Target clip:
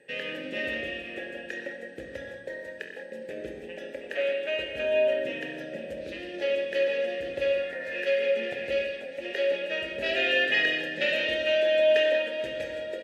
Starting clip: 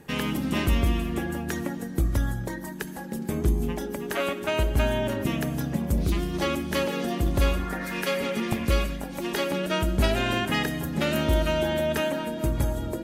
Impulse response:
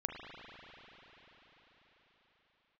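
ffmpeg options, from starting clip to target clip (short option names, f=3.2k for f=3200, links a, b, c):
-filter_complex "[0:a]asetnsamples=n=441:p=0,asendcmd='10.06 equalizer g 14',equalizer=f=4.2k:t=o:w=2.8:g=6.5,aeval=exprs='val(0)+0.00316*sin(2*PI*8200*n/s)':c=same,asplit=3[a][b][c];[a]bandpass=f=530:t=q:w=8,volume=0dB[d];[b]bandpass=f=1.84k:t=q:w=8,volume=-6dB[e];[c]bandpass=f=2.48k:t=q:w=8,volume=-9dB[f];[d][e][f]amix=inputs=3:normalize=0,aecho=1:1:497:0.2[g];[1:a]atrim=start_sample=2205,afade=t=out:st=0.39:d=0.01,atrim=end_sample=17640,asetrate=70560,aresample=44100[h];[g][h]afir=irnorm=-1:irlink=0,volume=9dB"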